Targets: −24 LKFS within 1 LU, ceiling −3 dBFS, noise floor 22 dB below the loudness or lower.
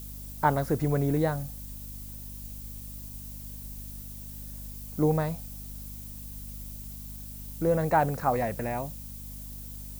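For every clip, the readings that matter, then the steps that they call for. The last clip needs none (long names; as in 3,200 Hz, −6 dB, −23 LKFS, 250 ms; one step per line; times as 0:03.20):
mains hum 50 Hz; hum harmonics up to 250 Hz; level of the hum −40 dBFS; background noise floor −42 dBFS; target noise floor −54 dBFS; integrated loudness −31.5 LKFS; sample peak −10.5 dBFS; target loudness −24.0 LKFS
→ mains-hum notches 50/100/150/200/250 Hz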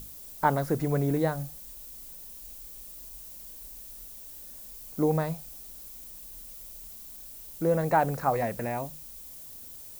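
mains hum none found; background noise floor −45 dBFS; target noise floor −54 dBFS
→ broadband denoise 9 dB, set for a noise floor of −45 dBFS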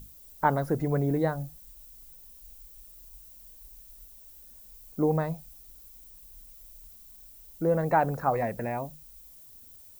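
background noise floor −51 dBFS; integrated loudness −28.5 LKFS; sample peak −10.0 dBFS; target loudness −24.0 LKFS
→ level +4.5 dB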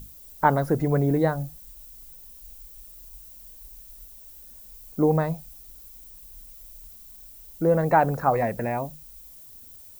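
integrated loudness −24.0 LKFS; sample peak −5.5 dBFS; background noise floor −47 dBFS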